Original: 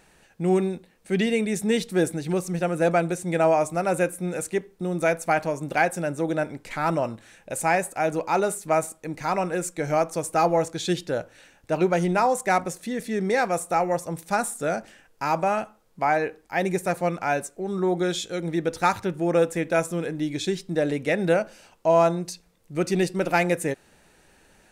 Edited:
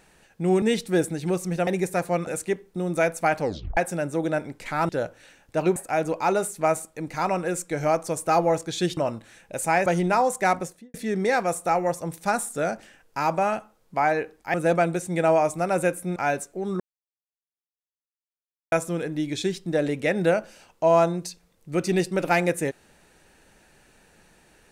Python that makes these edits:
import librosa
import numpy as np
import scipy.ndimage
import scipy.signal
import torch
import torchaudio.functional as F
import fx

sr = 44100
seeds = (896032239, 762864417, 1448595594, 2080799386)

y = fx.studio_fade_out(x, sr, start_s=12.63, length_s=0.36)
y = fx.edit(y, sr, fx.cut(start_s=0.62, length_s=1.03),
    fx.swap(start_s=2.7, length_s=1.62, other_s=16.59, other_length_s=0.6),
    fx.tape_stop(start_s=5.45, length_s=0.37),
    fx.swap(start_s=6.94, length_s=0.89, other_s=11.04, other_length_s=0.87),
    fx.silence(start_s=17.83, length_s=1.92), tone=tone)